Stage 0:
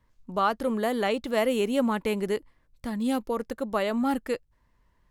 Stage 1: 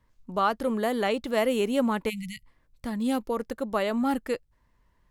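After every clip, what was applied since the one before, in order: spectral delete 2.09–2.45, 210–1900 Hz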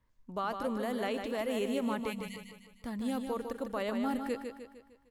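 limiter -17.5 dBFS, peak gain reduction 5.5 dB; on a send: feedback echo 0.152 s, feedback 47%, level -6.5 dB; on the sum: gain -7 dB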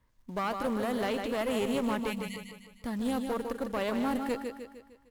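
in parallel at -4 dB: short-mantissa float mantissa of 2-bit; on the sum: one-sided clip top -31.5 dBFS

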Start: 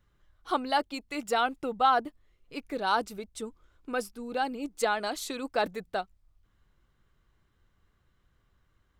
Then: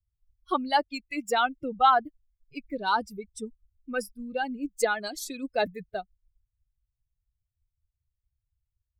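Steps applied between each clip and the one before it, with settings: per-bin expansion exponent 2; gain +5.5 dB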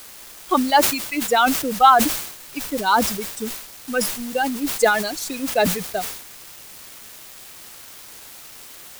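added noise white -46 dBFS; sample gate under -42.5 dBFS; sustainer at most 71 dB/s; gain +7.5 dB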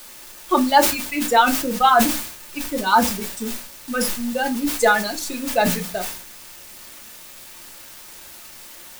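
reverb RT60 0.25 s, pre-delay 3 ms, DRR 2 dB; gain -1.5 dB

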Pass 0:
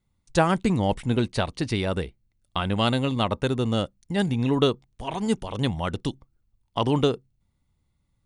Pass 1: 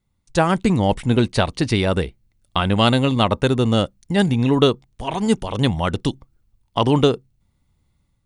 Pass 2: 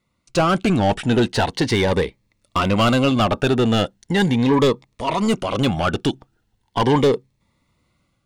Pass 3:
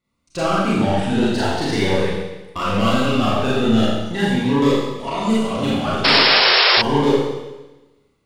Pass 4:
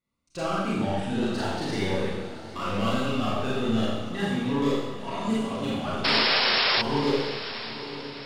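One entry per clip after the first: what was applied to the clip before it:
AGC gain up to 6 dB; gain +1.5 dB
overdrive pedal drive 25 dB, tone 2100 Hz, clips at -1 dBFS; cascading phaser rising 0.39 Hz; gain -5 dB
Schroeder reverb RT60 1.1 s, combs from 28 ms, DRR -7.5 dB; painted sound noise, 6.04–6.82, 350–5500 Hz -5 dBFS; gain -8.5 dB
diffused feedback echo 0.905 s, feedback 48%, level -12.5 dB; gain -9 dB

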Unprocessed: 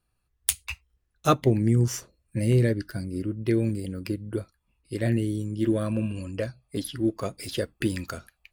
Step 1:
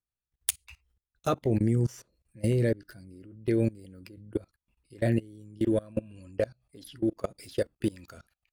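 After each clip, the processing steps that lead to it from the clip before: notch 1100 Hz, Q 24; dynamic EQ 570 Hz, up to +5 dB, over -37 dBFS, Q 1.2; level quantiser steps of 24 dB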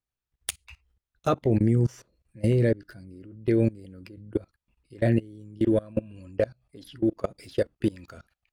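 high shelf 6300 Hz -11 dB; gain +3.5 dB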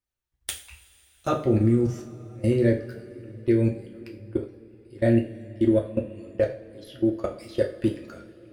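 two-slope reverb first 0.38 s, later 4.1 s, from -22 dB, DRR 0 dB; gain -2 dB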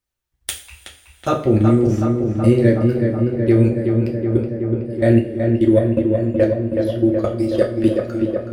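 darkening echo 0.373 s, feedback 81%, low-pass 2300 Hz, level -5 dB; gain +6 dB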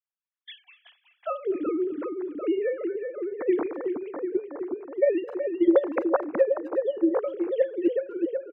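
sine-wave speech; harmonic-percussive split harmonic -6 dB; speakerphone echo 0.25 s, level -21 dB; gain -5 dB

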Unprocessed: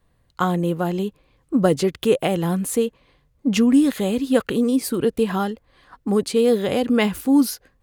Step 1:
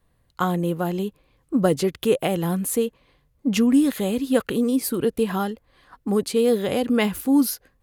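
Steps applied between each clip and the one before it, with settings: bell 12000 Hz +7 dB 0.4 oct; gain -2 dB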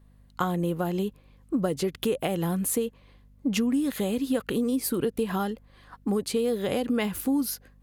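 compressor 5:1, threshold -23 dBFS, peak gain reduction 9.5 dB; hum 50 Hz, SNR 28 dB

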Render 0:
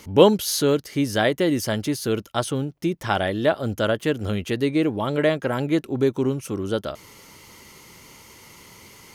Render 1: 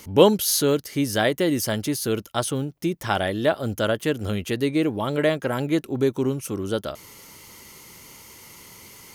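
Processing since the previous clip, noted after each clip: high shelf 8100 Hz +9 dB; gain -1 dB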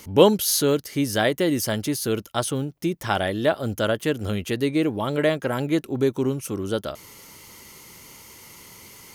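nothing audible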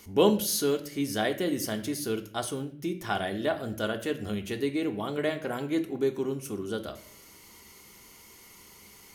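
reverb RT60 0.55 s, pre-delay 3 ms, DRR 4 dB; gain -8 dB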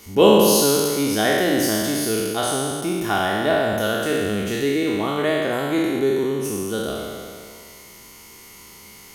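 spectral trails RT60 2.18 s; gain +5 dB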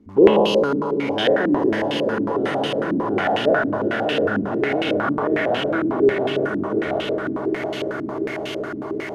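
switching spikes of -17.5 dBFS; swelling echo 0.173 s, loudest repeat 8, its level -14 dB; stepped low-pass 11 Hz 270–2900 Hz; gain -5 dB

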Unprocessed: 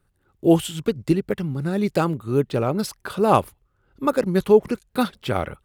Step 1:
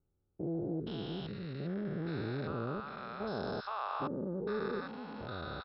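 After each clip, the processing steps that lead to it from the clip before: stepped spectrum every 0.4 s; rippled Chebyshev low-pass 5400 Hz, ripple 9 dB; bands offset in time lows, highs 0.47 s, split 710 Hz; gain -2 dB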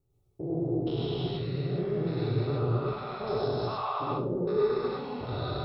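thirty-one-band EQ 125 Hz +10 dB, 200 Hz -11 dB, 400 Hz +3 dB, 1600 Hz -12 dB; limiter -30 dBFS, peak gain reduction 6 dB; reverb RT60 0.35 s, pre-delay 93 ms, DRR -4 dB; gain +3 dB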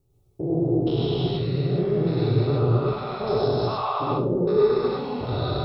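bell 1700 Hz -4 dB 1.3 oct; gain +7.5 dB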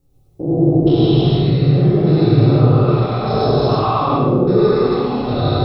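shoebox room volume 730 m³, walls mixed, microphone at 2.1 m; gain +3.5 dB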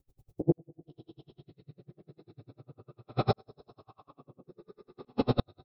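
flipped gate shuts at -8 dBFS, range -32 dB; dB-linear tremolo 10 Hz, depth 37 dB; gain -2 dB

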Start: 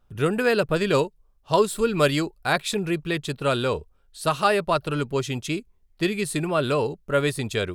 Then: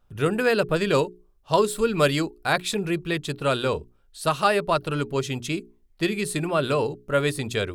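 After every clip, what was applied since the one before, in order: notches 60/120/180/240/300/360/420 Hz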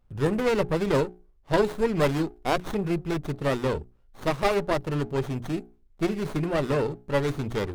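low shelf 240 Hz +5.5 dB; running maximum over 17 samples; gain -2.5 dB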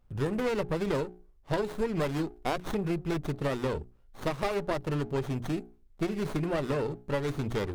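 compressor, threshold -26 dBFS, peak gain reduction 9.5 dB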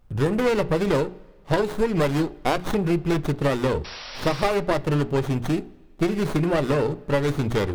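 painted sound noise, 3.84–4.45, 470–5800 Hz -46 dBFS; on a send at -15 dB: reverb, pre-delay 3 ms; on the sum: gain +8 dB

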